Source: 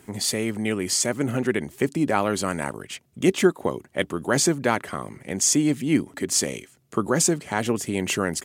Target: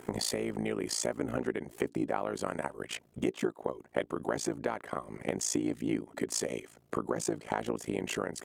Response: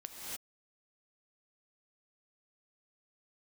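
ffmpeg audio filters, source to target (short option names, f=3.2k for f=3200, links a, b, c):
-af "equalizer=f=640:w=0.42:g=11,acompressor=threshold=-27dB:ratio=5,tremolo=f=56:d=0.919"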